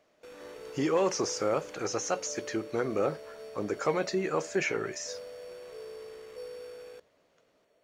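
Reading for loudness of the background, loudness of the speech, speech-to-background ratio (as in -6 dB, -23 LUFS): -45.5 LUFS, -31.5 LUFS, 14.0 dB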